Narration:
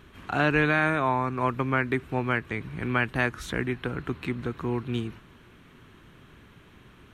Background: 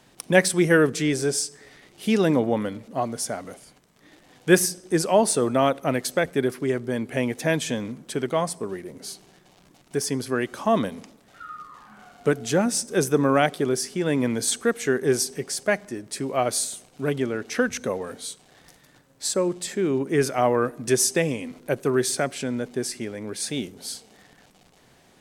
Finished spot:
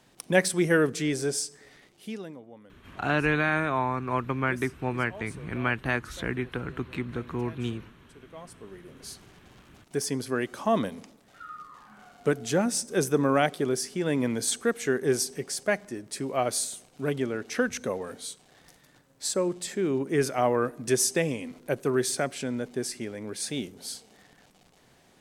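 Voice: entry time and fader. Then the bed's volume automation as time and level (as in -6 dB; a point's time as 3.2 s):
2.70 s, -2.0 dB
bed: 1.82 s -4.5 dB
2.4 s -25.5 dB
8.18 s -25.5 dB
9.19 s -3.5 dB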